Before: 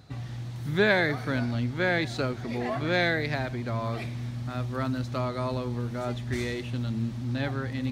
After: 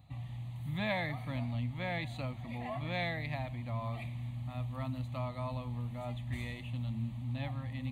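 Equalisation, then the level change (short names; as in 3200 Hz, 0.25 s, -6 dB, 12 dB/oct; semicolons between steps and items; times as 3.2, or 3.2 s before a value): low shelf 170 Hz +3 dB; fixed phaser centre 1500 Hz, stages 6; -6.5 dB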